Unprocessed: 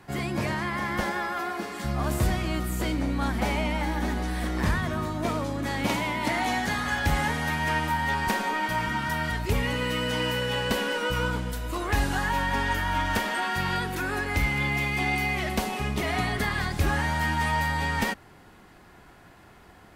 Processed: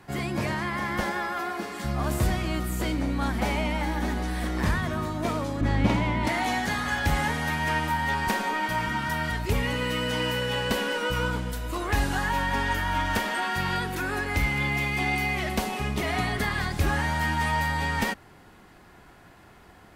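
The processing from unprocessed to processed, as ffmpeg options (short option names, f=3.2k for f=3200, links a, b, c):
-filter_complex "[0:a]asettb=1/sr,asplit=3[a][b][c];[a]atrim=end=5.614[d];[b]atrim=start=5.61:end=6.27,asetpts=PTS-STARTPTS,afade=t=in:d=0.004:c=qsin,afade=t=out:st=0.656:d=0.004:c=qsin,aemphasis=mode=reproduction:type=bsi[e];[c]atrim=start=6.266[f];[d][e]acrossfade=d=0.004:c1=hsin:c2=qsin[g];[g][f]acrossfade=d=0.004:c1=qsin:c2=hsin"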